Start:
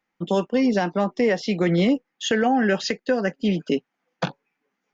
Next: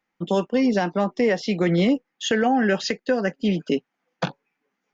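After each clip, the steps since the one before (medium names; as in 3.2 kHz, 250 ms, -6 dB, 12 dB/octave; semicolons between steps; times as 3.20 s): no audible change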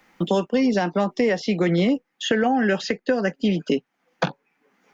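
three bands compressed up and down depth 70%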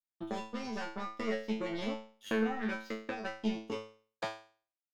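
power-law waveshaper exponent 2; feedback comb 110 Hz, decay 0.42 s, harmonics all, mix 100%; trim +5.5 dB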